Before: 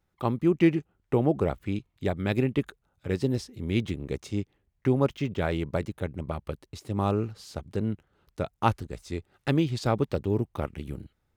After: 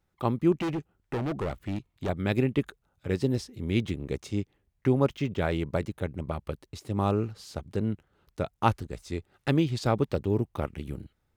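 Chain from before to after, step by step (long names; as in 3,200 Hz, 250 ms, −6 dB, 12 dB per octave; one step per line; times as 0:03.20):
0:00.52–0:02.09: hard clipping −27 dBFS, distortion −10 dB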